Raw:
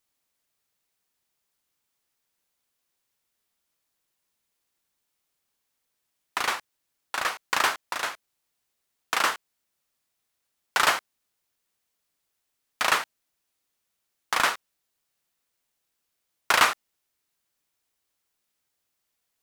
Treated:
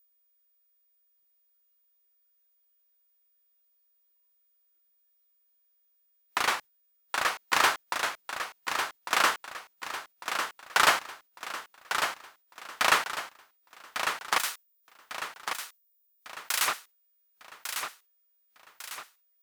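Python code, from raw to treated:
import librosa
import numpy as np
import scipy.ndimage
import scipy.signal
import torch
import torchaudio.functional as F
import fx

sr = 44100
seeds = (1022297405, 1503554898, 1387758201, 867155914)

p1 = fx.pre_emphasis(x, sr, coefficient=0.9, at=(14.38, 16.68))
p2 = p1 + fx.echo_feedback(p1, sr, ms=1150, feedback_pct=46, wet_db=-7.0, dry=0)
p3 = p2 + 10.0 ** (-59.0 / 20.0) * np.sin(2.0 * np.pi * 15000.0 * np.arange(len(p2)) / sr)
y = fx.noise_reduce_blind(p3, sr, reduce_db=9)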